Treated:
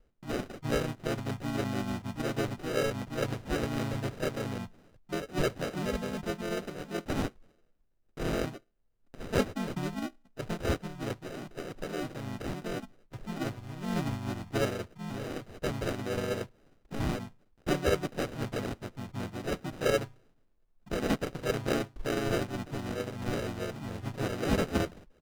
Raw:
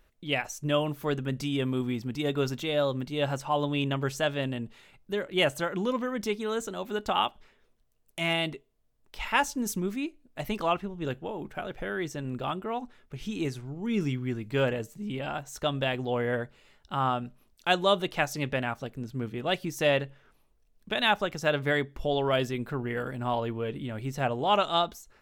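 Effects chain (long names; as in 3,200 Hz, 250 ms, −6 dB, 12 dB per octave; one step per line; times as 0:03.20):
decimation without filtering 40×
high-shelf EQ 8,400 Hz −7.5 dB
pitch-shifted copies added −4 semitones 0 dB
level −6.5 dB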